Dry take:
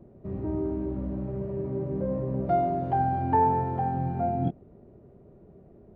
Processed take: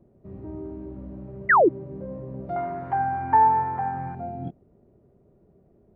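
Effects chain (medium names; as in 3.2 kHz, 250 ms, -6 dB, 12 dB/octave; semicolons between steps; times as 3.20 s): 1.49–1.69 s: painted sound fall 290–2100 Hz -9 dBFS; 2.56–4.15 s: high-order bell 1.4 kHz +14.5 dB; trim -6.5 dB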